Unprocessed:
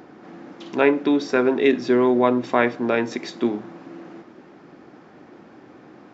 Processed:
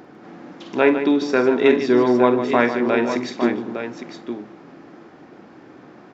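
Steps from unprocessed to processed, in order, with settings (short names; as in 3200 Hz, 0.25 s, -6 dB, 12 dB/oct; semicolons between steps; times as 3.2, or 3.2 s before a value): tapped delay 46/151/859 ms -11.5/-10/-8.5 dB; gain +1 dB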